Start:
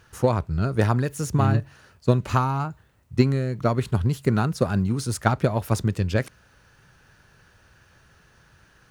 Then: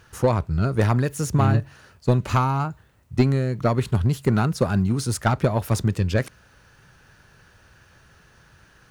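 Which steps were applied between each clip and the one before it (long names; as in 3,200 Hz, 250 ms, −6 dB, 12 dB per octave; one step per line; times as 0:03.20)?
soft clipping −10.5 dBFS, distortion −16 dB
level +2.5 dB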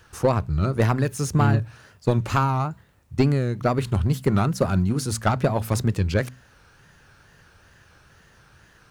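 mains-hum notches 60/120/180/240 Hz
tape wow and flutter 110 cents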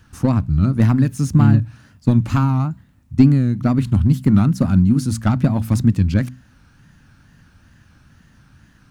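low shelf with overshoot 330 Hz +7.5 dB, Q 3
level −2 dB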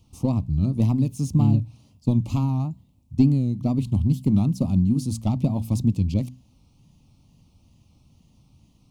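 Butterworth band-reject 1,600 Hz, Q 0.94
level −6 dB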